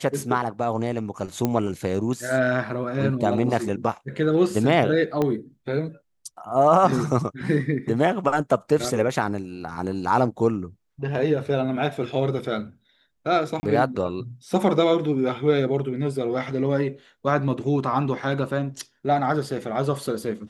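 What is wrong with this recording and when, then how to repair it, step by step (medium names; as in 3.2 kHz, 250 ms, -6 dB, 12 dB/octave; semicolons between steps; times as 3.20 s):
1.45 s: pop -9 dBFS
5.22 s: pop -12 dBFS
13.60–13.63 s: dropout 30 ms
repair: de-click; interpolate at 13.60 s, 30 ms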